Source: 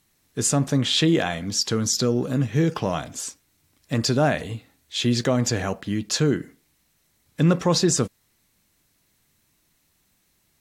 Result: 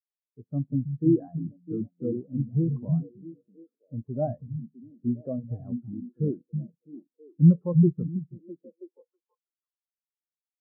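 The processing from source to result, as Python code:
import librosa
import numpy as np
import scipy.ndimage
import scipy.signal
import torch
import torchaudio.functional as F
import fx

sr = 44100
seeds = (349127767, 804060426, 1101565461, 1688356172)

y = scipy.signal.sosfilt(scipy.signal.cheby2(4, 60, 4700.0, 'lowpass', fs=sr, output='sos'), x)
y = fx.echo_stepped(y, sr, ms=326, hz=160.0, octaves=0.7, feedback_pct=70, wet_db=-1)
y = fx.spectral_expand(y, sr, expansion=2.5)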